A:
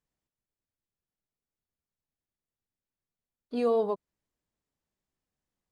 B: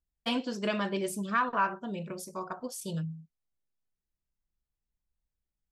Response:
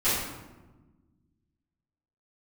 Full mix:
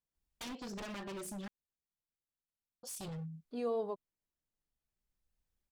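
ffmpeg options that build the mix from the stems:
-filter_complex "[0:a]volume=0.335,asplit=2[s0][s1];[1:a]acompressor=threshold=0.0112:ratio=5,aeval=exprs='0.0106*(abs(mod(val(0)/0.0106+3,4)-2)-1)':c=same,adelay=150,volume=1.12,asplit=3[s2][s3][s4];[s2]atrim=end=1.48,asetpts=PTS-STARTPTS,afade=t=out:st=1.476:d=0.004:c=hsin[s5];[s3]atrim=start=1.48:end=2.83,asetpts=PTS-STARTPTS,volume=0[s6];[s4]atrim=start=2.83,asetpts=PTS-STARTPTS,afade=t=in:d=0.004:c=hsin[s7];[s5][s6][s7]concat=n=3:v=0:a=1[s8];[s1]apad=whole_len=258443[s9];[s8][s9]sidechaincompress=threshold=0.00224:ratio=8:attack=16:release=1040[s10];[s0][s10]amix=inputs=2:normalize=0"

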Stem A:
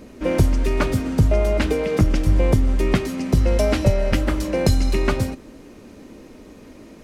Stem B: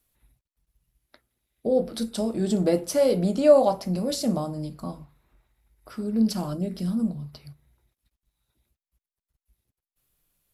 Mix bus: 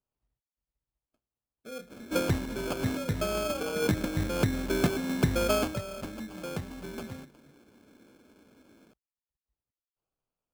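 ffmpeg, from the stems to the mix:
-filter_complex "[0:a]highpass=110,adelay=1900,volume=0.562,afade=t=out:st=5.53:d=0.23:silence=0.298538[s0];[1:a]volume=0.106,asplit=2[s1][s2];[s2]apad=whole_len=393946[s3];[s0][s3]sidechaincompress=threshold=0.00447:ratio=3:attack=31:release=157[s4];[s4][s1]amix=inputs=2:normalize=0,acrusher=samples=23:mix=1:aa=0.000001"

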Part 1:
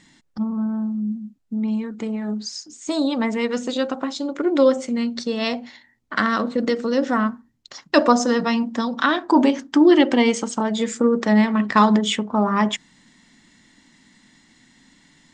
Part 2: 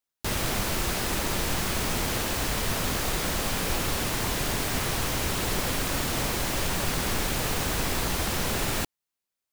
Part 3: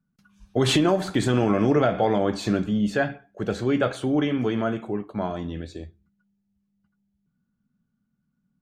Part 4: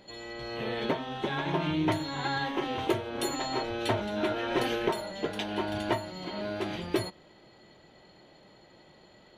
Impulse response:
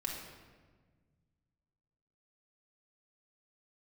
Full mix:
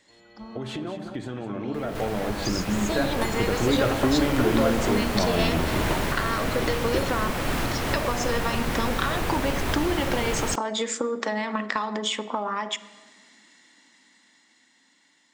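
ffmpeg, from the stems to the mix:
-filter_complex "[0:a]highpass=420,acompressor=threshold=0.0562:ratio=5,volume=0.398,asplit=3[s0][s1][s2];[s1]volume=0.168[s3];[1:a]acrossover=split=2900[s4][s5];[s5]acompressor=threshold=0.01:ratio=4:attack=1:release=60[s6];[s4][s6]amix=inputs=2:normalize=0,adelay=1500,volume=0.422,asplit=2[s7][s8];[s8]volume=0.668[s9];[2:a]highshelf=f=4400:g=-9.5,volume=0.501,asplit=3[s10][s11][s12];[s11]volume=0.0841[s13];[s12]volume=0.141[s14];[3:a]volume=0.224[s15];[s2]apad=whole_len=486098[s16];[s7][s16]sidechaincompress=threshold=0.00282:ratio=8:attack=16:release=251[s17];[s0][s17]amix=inputs=2:normalize=0,acompressor=threshold=0.0141:ratio=6,volume=1[s18];[s10][s15]amix=inputs=2:normalize=0,acompressor=threshold=0.0224:ratio=6,volume=1[s19];[4:a]atrim=start_sample=2205[s20];[s3][s13]amix=inputs=2:normalize=0[s21];[s21][s20]afir=irnorm=-1:irlink=0[s22];[s9][s14]amix=inputs=2:normalize=0,aecho=0:1:207:1[s23];[s18][s19][s22][s23]amix=inputs=4:normalize=0,dynaudnorm=f=490:g=11:m=3.98"

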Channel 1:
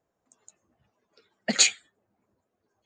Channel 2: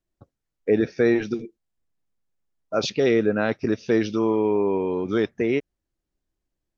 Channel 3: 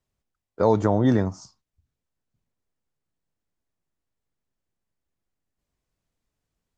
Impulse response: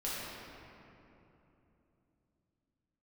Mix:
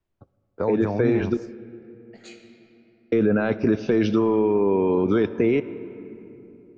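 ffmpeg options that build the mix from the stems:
-filter_complex "[0:a]flanger=delay=15.5:depth=7.6:speed=1.2,adelay=650,volume=0.126,asplit=2[s0][s1];[s1]volume=0.398[s2];[1:a]bandreject=f=1900:w=8.6,dynaudnorm=f=600:g=5:m=3.76,alimiter=limit=0.316:level=0:latency=1:release=13,volume=0.944,asplit=3[s3][s4][s5];[s3]atrim=end=1.37,asetpts=PTS-STARTPTS,afade=t=out:st=1.366:d=0.004:c=hsin[s6];[s4]atrim=start=1.37:end=3.12,asetpts=PTS-STARTPTS,volume=0[s7];[s5]atrim=start=3.12,asetpts=PTS-STARTPTS,afade=t=in:d=0.004:c=hsin[s8];[s6][s7][s8]concat=n=3:v=0:a=1,asplit=2[s9][s10];[s10]volume=0.112[s11];[2:a]acompressor=threshold=0.1:ratio=3,volume=0.841,asplit=2[s12][s13];[s13]apad=whole_len=154783[s14];[s0][s14]sidechaincompress=threshold=0.0141:ratio=8:attack=16:release=1230[s15];[3:a]atrim=start_sample=2205[s16];[s2][s11]amix=inputs=2:normalize=0[s17];[s17][s16]afir=irnorm=-1:irlink=0[s18];[s15][s9][s12][s18]amix=inputs=4:normalize=0,bass=f=250:g=0,treble=f=4000:g=-12,acrossover=split=270[s19][s20];[s20]acompressor=threshold=0.1:ratio=3[s21];[s19][s21]amix=inputs=2:normalize=0"

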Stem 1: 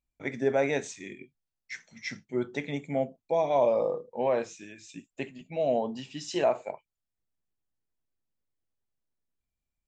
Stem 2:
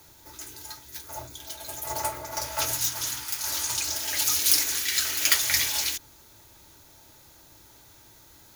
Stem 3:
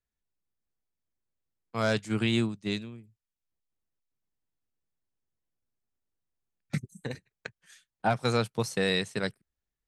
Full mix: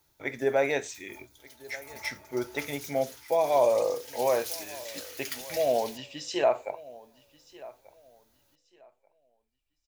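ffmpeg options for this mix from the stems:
-filter_complex "[0:a]equalizer=f=190:w=1.3:g=-12.5,volume=1.33,asplit=2[s0][s1];[s1]volume=0.0944[s2];[1:a]volume=0.158[s3];[s2]aecho=0:1:1186|2372|3558|4744:1|0.24|0.0576|0.0138[s4];[s0][s3][s4]amix=inputs=3:normalize=0,equalizer=f=6800:t=o:w=0.25:g=-3.5"

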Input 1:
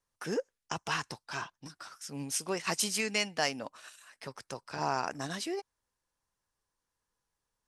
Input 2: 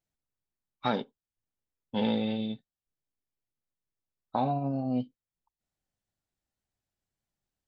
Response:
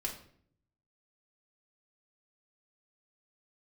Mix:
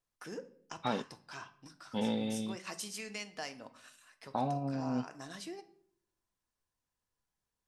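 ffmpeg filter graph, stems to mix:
-filter_complex "[0:a]acompressor=threshold=0.01:ratio=1.5,volume=0.316,asplit=2[s0][s1];[s1]volume=0.596[s2];[1:a]volume=0.562,asplit=2[s3][s4];[s4]apad=whole_len=338511[s5];[s0][s5]sidechaincompress=threshold=0.0178:ratio=8:attack=16:release=270[s6];[2:a]atrim=start_sample=2205[s7];[s2][s7]afir=irnorm=-1:irlink=0[s8];[s6][s3][s8]amix=inputs=3:normalize=0"

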